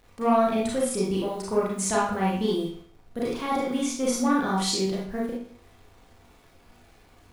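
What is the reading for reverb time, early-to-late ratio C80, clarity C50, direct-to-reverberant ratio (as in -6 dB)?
0.55 s, 6.5 dB, 1.0 dB, -6.0 dB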